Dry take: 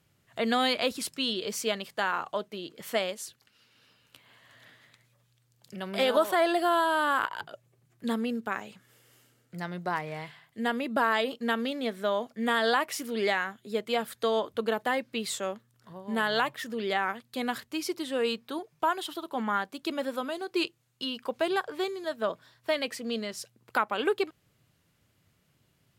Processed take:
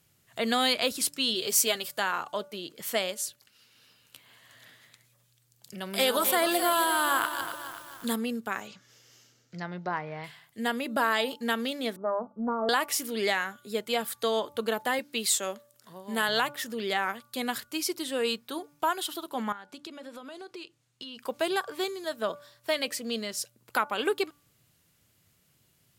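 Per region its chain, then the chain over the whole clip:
1.34–1.99 s: treble shelf 7.4 kHz +8 dB + comb 7.5 ms, depth 52%
5.90–8.16 s: treble shelf 7.9 kHz +9.5 dB + band-stop 630 Hz, Q 11 + bit-crushed delay 265 ms, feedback 55%, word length 8-bit, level -10 dB
8.67–10.24 s: low-pass that closes with the level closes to 1.9 kHz, closed at -31.5 dBFS + resonant high shelf 7.5 kHz -9 dB, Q 3
11.96–12.69 s: Chebyshev low-pass 1.3 kHz, order 10 + hum notches 50/100/150/200 Hz + loudspeaker Doppler distortion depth 0.26 ms
14.99–16.29 s: high-pass 180 Hz + peaking EQ 14 kHz +3.5 dB 2.5 oct
19.52–21.18 s: compression 12:1, threshold -38 dBFS + distance through air 58 m
whole clip: treble shelf 4.6 kHz +11 dB; de-hum 290.4 Hz, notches 5; trim -1 dB

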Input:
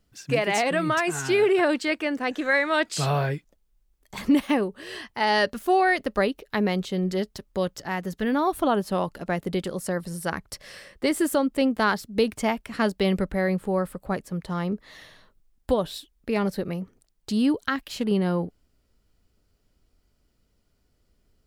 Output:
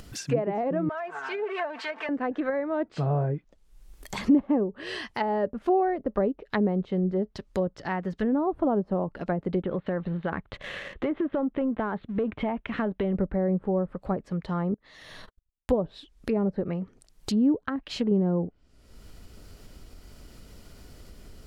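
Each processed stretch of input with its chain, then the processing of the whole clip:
0.89–2.09 s: jump at every zero crossing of -27.5 dBFS + high-pass 980 Hz + comb 4.5 ms, depth 61%
9.62–13.15 s: steep low-pass 3.8 kHz 72 dB/octave + waveshaping leveller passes 1 + compression 4:1, threshold -24 dBFS
14.74–15.70 s: gate -55 dBFS, range -54 dB + compression 8:1, threshold -52 dBFS + tape noise reduction on one side only decoder only
whole clip: low-pass that closes with the level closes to 620 Hz, closed at -21.5 dBFS; upward compressor, threshold -29 dBFS

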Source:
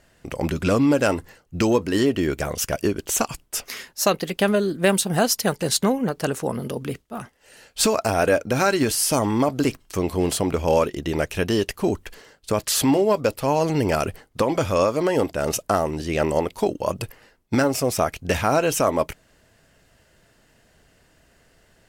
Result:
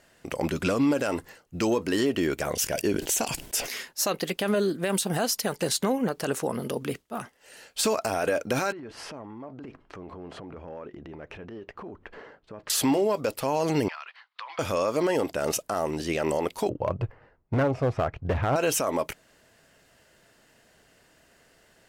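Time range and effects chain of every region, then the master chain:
2.53–3.77 s: peaking EQ 1.2 kHz -10 dB 0.35 oct + decay stretcher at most 73 dB/s
8.72–12.70 s: low-pass 1.5 kHz + transient shaper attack -10 dB, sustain +6 dB + compression 10:1, threshold -35 dBFS
13.88–14.59 s: Chebyshev band-pass 1–4.2 kHz, order 3 + compression, threshold -35 dBFS
16.69–18.56 s: low-pass 1.3 kHz + resonant low shelf 160 Hz +9 dB, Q 1.5 + hard clipper -15 dBFS
whole clip: bass shelf 130 Hz -12 dB; peak limiter -15.5 dBFS

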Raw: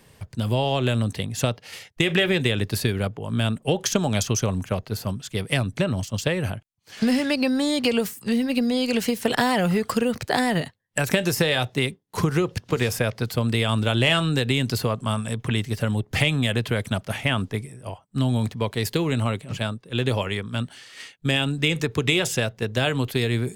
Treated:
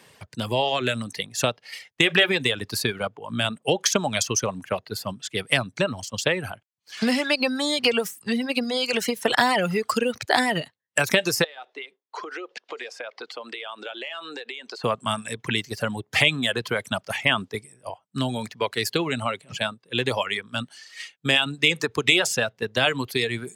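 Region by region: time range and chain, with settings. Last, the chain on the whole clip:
11.44–14.84 s: high-pass 360 Hz 24 dB/octave + compression, threshold -32 dBFS + distance through air 120 m
whole clip: frequency weighting A; reverb removal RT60 1.9 s; bass shelf 180 Hz +9.5 dB; trim +3.5 dB

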